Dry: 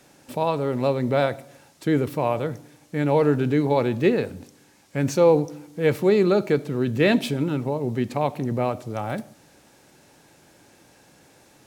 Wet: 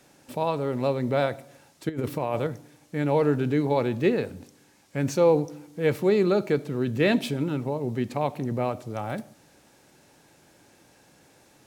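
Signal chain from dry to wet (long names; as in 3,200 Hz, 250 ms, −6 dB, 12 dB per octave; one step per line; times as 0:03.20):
0:01.89–0:02.47: compressor whose output falls as the input rises −24 dBFS, ratio −0.5
level −3 dB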